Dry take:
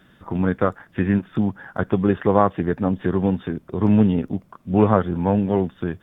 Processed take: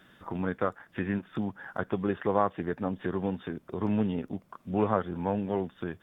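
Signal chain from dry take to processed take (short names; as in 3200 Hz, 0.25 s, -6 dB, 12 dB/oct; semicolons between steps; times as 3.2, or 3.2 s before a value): low shelf 270 Hz -8 dB; in parallel at +2 dB: compressor, threshold -35 dBFS, peak gain reduction 21.5 dB; on the sum: gain -8.5 dB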